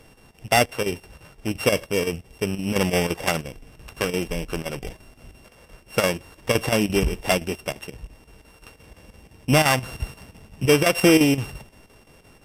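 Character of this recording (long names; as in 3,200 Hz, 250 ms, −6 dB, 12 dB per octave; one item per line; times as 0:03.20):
a buzz of ramps at a fixed pitch in blocks of 16 samples
chopped level 5.8 Hz, depth 60%, duty 80%
AAC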